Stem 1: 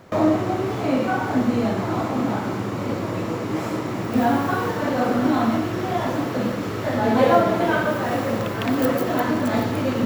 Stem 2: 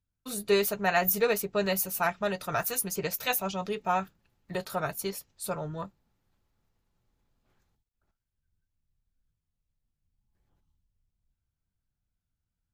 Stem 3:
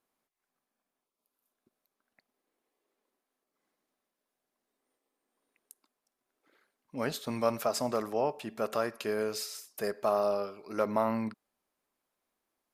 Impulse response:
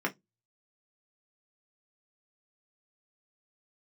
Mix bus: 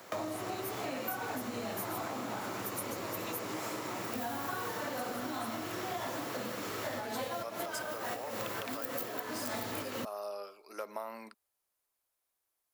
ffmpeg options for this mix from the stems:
-filter_complex "[0:a]lowshelf=frequency=260:gain=-8.5,acrossover=split=150|3000[link_01][link_02][link_03];[link_02]acompressor=threshold=-21dB:ratio=6[link_04];[link_01][link_04][link_03]amix=inputs=3:normalize=0,volume=-1.5dB[link_05];[1:a]volume=-13dB[link_06];[2:a]highpass=340,volume=-5.5dB,asplit=2[link_07][link_08];[link_08]apad=whole_len=443231[link_09];[link_05][link_09]sidechaincompress=threshold=-41dB:ratio=8:attack=16:release=159[link_10];[link_10][link_06][link_07]amix=inputs=3:normalize=0,highshelf=frequency=5700:gain=11.5,acrossover=split=130[link_11][link_12];[link_12]acompressor=threshold=-35dB:ratio=4[link_13];[link_11][link_13]amix=inputs=2:normalize=0,lowshelf=frequency=210:gain=-12"

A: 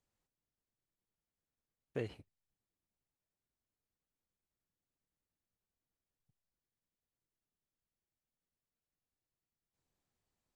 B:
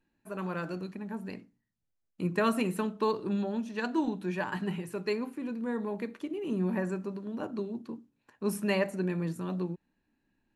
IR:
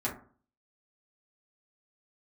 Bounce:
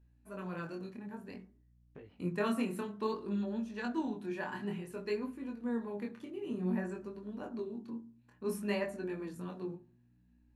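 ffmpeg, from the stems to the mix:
-filter_complex "[0:a]lowpass=3100,acompressor=threshold=-44dB:ratio=6,volume=-2dB[link_01];[1:a]aeval=exprs='val(0)+0.00158*(sin(2*PI*60*n/s)+sin(2*PI*2*60*n/s)/2+sin(2*PI*3*60*n/s)/3+sin(2*PI*4*60*n/s)/4+sin(2*PI*5*60*n/s)/5)':channel_layout=same,volume=-5.5dB,asplit=2[link_02][link_03];[link_03]volume=-12dB[link_04];[2:a]atrim=start_sample=2205[link_05];[link_04][link_05]afir=irnorm=-1:irlink=0[link_06];[link_01][link_02][link_06]amix=inputs=3:normalize=0,flanger=delay=18.5:depth=7.2:speed=0.56"

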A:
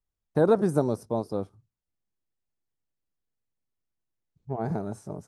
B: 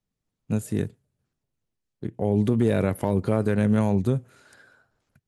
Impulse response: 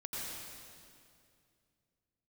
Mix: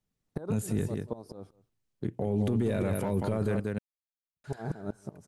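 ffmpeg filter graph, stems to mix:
-filter_complex "[0:a]agate=range=-33dB:threshold=-56dB:ratio=3:detection=peak,acompressor=threshold=-22dB:ratio=6,aeval=exprs='val(0)*pow(10,-26*if(lt(mod(-5.3*n/s,1),2*abs(-5.3)/1000),1-mod(-5.3*n/s,1)/(2*abs(-5.3)/1000),(mod(-5.3*n/s,1)-2*abs(-5.3)/1000)/(1-2*abs(-5.3)/1000))/20)':channel_layout=same,volume=2.5dB,asplit=2[link_01][link_02];[link_02]volume=-21.5dB[link_03];[1:a]volume=0dB,asplit=3[link_04][link_05][link_06];[link_04]atrim=end=3.6,asetpts=PTS-STARTPTS,afade=type=out:start_time=3.596:duration=0.004:curve=hsin[link_07];[link_05]atrim=start=3.6:end=4.44,asetpts=PTS-STARTPTS,volume=0[link_08];[link_06]atrim=start=4.44,asetpts=PTS-STARTPTS,afade=type=in:duration=0.004:curve=hsin[link_09];[link_07][link_08][link_09]concat=n=3:v=0:a=1,asplit=3[link_10][link_11][link_12];[link_11]volume=-9.5dB[link_13];[link_12]apad=whole_len=232569[link_14];[link_01][link_14]sidechaincompress=threshold=-31dB:ratio=8:attack=8.2:release=247[link_15];[link_03][link_13]amix=inputs=2:normalize=0,aecho=0:1:186:1[link_16];[link_15][link_10][link_16]amix=inputs=3:normalize=0,alimiter=limit=-20.5dB:level=0:latency=1:release=11"

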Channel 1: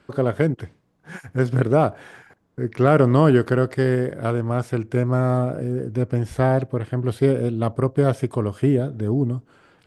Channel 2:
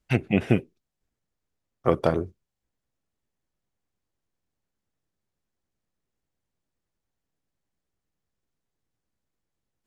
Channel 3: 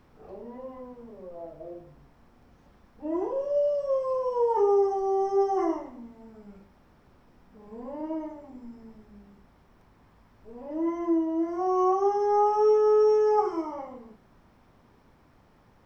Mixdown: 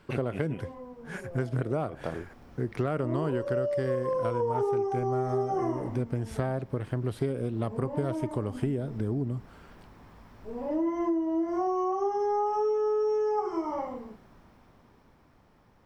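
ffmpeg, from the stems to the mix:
ffmpeg -i stem1.wav -i stem2.wav -i stem3.wav -filter_complex "[0:a]volume=-2.5dB,asplit=2[link_01][link_02];[1:a]volume=-10.5dB[link_03];[2:a]dynaudnorm=framelen=180:gausssize=21:maxgain=9dB,volume=-2dB[link_04];[link_02]apad=whole_len=434980[link_05];[link_03][link_05]sidechaincompress=threshold=-26dB:ratio=8:attack=16:release=109[link_06];[link_01][link_06][link_04]amix=inputs=3:normalize=0,acompressor=threshold=-26dB:ratio=6" out.wav

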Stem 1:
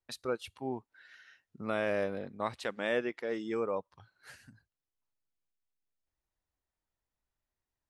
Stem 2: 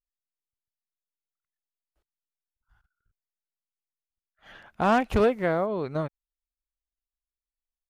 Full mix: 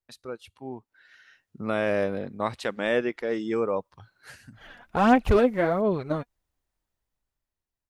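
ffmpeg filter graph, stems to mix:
ffmpeg -i stem1.wav -i stem2.wav -filter_complex "[0:a]volume=-4.5dB[link_01];[1:a]aphaser=in_gain=1:out_gain=1:delay=4.2:decay=0.52:speed=1.4:type=sinusoidal,adelay=150,volume=-11dB[link_02];[link_01][link_02]amix=inputs=2:normalize=0,lowshelf=frequency=400:gain=3.5,dynaudnorm=framelen=270:gausssize=9:maxgain=10dB" out.wav

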